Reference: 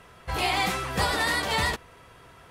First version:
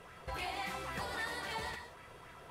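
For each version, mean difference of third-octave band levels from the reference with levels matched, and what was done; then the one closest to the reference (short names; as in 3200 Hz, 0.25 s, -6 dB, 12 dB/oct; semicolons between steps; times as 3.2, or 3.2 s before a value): 6.0 dB: compressor 6:1, threshold -36 dBFS, peak gain reduction 14.5 dB; non-linear reverb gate 0.21 s flat, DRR 6 dB; LFO bell 3.7 Hz 430–2200 Hz +7 dB; gain -5 dB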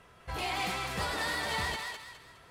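3.5 dB: high shelf 11000 Hz -3 dB; soft clip -20.5 dBFS, distortion -16 dB; on a send: thinning echo 0.207 s, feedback 38%, high-pass 880 Hz, level -3 dB; on the sum: gain -6.5 dB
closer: second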